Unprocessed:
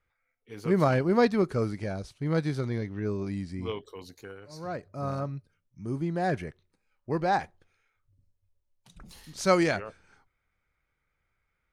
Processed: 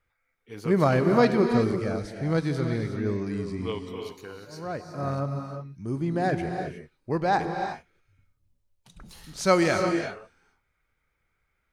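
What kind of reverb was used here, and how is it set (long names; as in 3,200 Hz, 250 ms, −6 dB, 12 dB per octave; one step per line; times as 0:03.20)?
reverb whose tail is shaped and stops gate 390 ms rising, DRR 5 dB
level +2 dB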